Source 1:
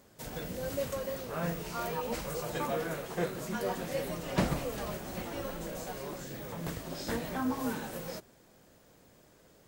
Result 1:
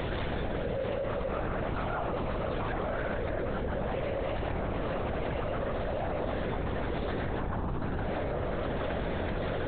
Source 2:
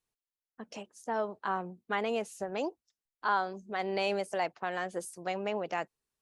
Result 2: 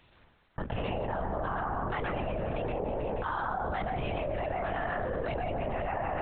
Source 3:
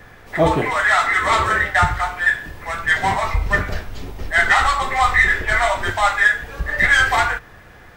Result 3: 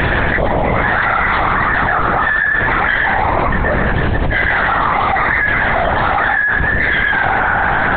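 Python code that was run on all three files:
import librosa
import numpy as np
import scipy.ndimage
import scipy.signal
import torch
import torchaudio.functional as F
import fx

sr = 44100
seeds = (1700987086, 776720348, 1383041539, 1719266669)

y = fx.echo_feedback(x, sr, ms=160, feedback_pct=52, wet_db=-14.0)
y = fx.rev_plate(y, sr, seeds[0], rt60_s=0.61, hf_ratio=0.25, predelay_ms=110, drr_db=-3.0)
y = fx.lpc_vocoder(y, sr, seeds[1], excitation='whisper', order=10)
y = fx.env_flatten(y, sr, amount_pct=100)
y = F.gain(torch.from_numpy(y), -11.0).numpy()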